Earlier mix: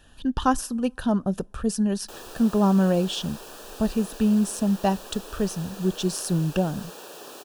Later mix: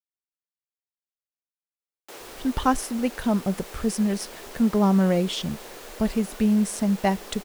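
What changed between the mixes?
speech: entry +2.20 s
master: remove Butterworth band-reject 2,100 Hz, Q 3.3

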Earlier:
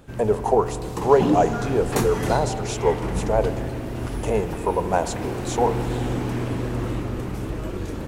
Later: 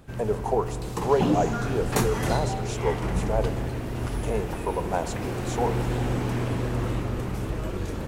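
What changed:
speech −6.0 dB
background: add parametric band 300 Hz −4 dB 0.69 octaves

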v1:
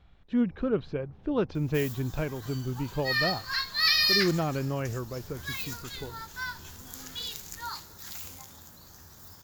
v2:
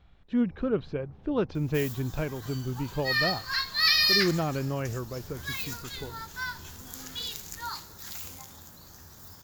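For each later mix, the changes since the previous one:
reverb: on, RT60 0.65 s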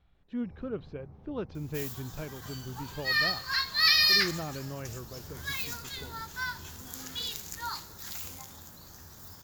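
speech −8.5 dB

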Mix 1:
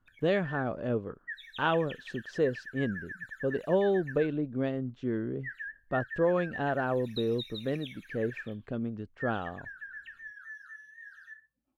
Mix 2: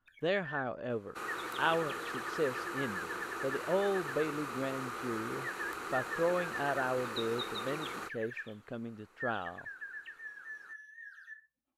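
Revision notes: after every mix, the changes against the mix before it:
second sound: unmuted
master: add low-shelf EQ 450 Hz −10.5 dB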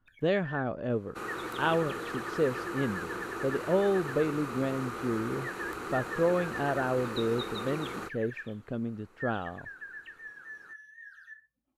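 master: add low-shelf EQ 450 Hz +10.5 dB

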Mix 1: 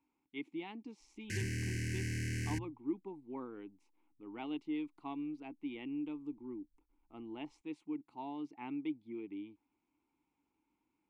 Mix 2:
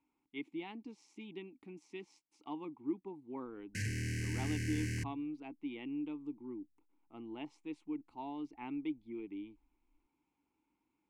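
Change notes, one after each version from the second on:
background: entry +2.45 s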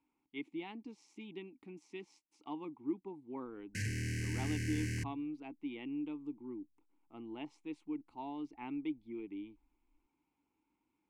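nothing changed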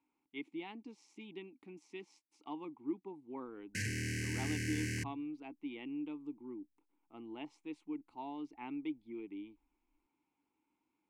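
background +3.0 dB
master: add low-shelf EQ 120 Hz −10 dB

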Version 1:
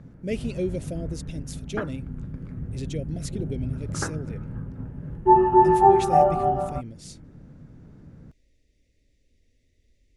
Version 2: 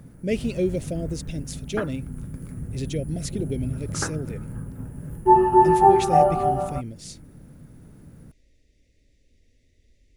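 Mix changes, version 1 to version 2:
speech +4.0 dB
background: remove high-frequency loss of the air 200 metres

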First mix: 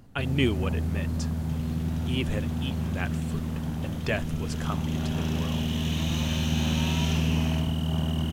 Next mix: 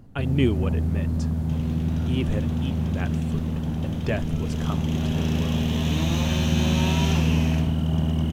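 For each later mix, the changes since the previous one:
second sound +7.0 dB
master: add tilt shelving filter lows +4.5 dB, about 870 Hz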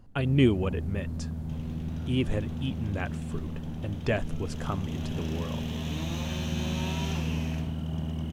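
first sound −9.5 dB
second sound −8.0 dB

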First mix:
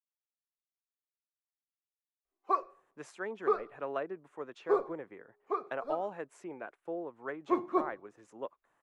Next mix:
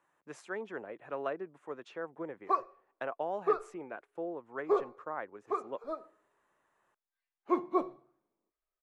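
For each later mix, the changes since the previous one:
speech: entry −2.70 s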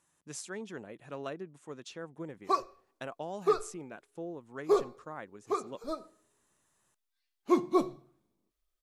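speech −5.5 dB
master: remove three-way crossover with the lows and the highs turned down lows −15 dB, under 350 Hz, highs −22 dB, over 2,300 Hz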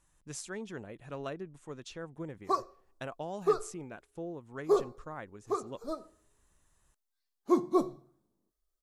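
speech: remove high-pass filter 160 Hz 12 dB per octave
background: add parametric band 2,600 Hz −13 dB 0.88 octaves

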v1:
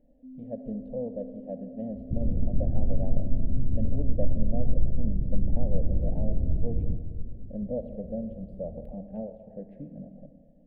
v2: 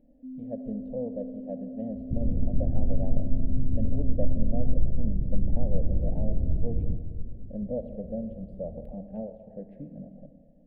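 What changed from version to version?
first sound +5.0 dB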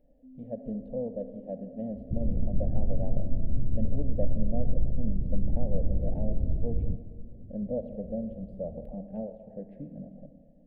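first sound: add parametric band 180 Hz −14.5 dB 1.8 octaves
second sound: send −10.0 dB

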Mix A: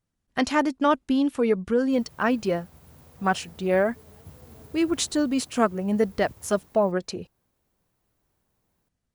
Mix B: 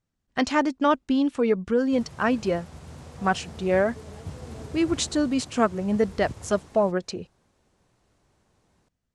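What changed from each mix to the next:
background +9.5 dB
master: add low-pass filter 8,500 Hz 24 dB per octave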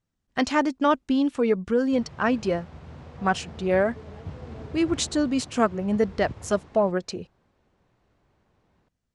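background: add low-pass filter 3,200 Hz 12 dB per octave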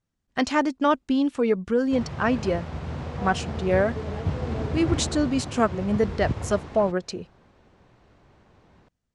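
background +10.5 dB

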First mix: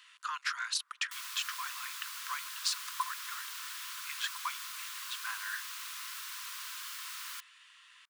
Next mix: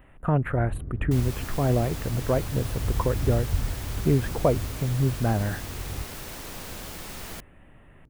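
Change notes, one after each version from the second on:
speech: add Butterworth band-reject 5,300 Hz, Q 0.52
master: remove Chebyshev high-pass with heavy ripple 1,000 Hz, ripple 3 dB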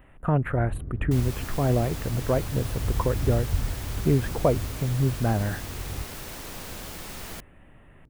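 nothing changed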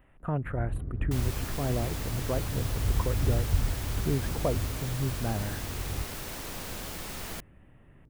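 speech −7.5 dB

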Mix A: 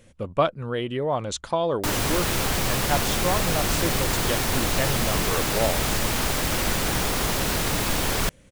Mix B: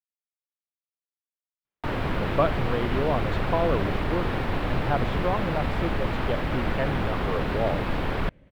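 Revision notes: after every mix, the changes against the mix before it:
speech: entry +2.00 s
master: add high-frequency loss of the air 470 metres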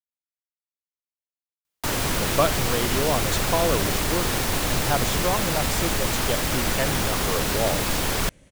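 master: remove high-frequency loss of the air 470 metres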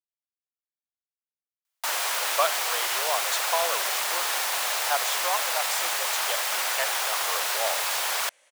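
master: add high-pass filter 670 Hz 24 dB per octave

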